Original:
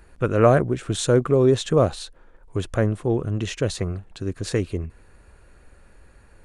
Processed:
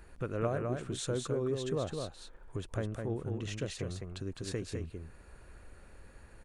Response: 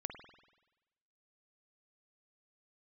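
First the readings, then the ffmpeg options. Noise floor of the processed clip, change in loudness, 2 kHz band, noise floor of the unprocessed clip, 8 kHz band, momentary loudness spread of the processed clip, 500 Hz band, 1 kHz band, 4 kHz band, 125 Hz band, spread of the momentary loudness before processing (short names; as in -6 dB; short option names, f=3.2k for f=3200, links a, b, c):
-57 dBFS, -14.5 dB, -14.0 dB, -53 dBFS, -11.0 dB, 23 LU, -15.0 dB, -16.0 dB, -11.0 dB, -13.5 dB, 15 LU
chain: -filter_complex "[0:a]acompressor=threshold=-39dB:ratio=2,asplit=2[a][b];[b]aecho=0:1:208:0.596[c];[a][c]amix=inputs=2:normalize=0,volume=-3.5dB"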